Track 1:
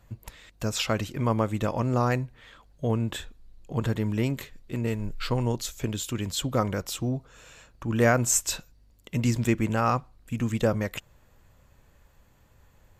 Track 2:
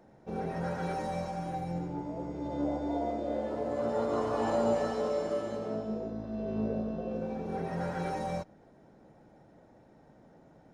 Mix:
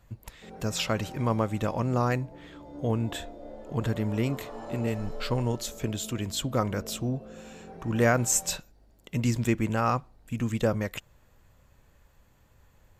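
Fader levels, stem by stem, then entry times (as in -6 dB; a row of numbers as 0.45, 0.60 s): -1.5, -10.5 dB; 0.00, 0.15 s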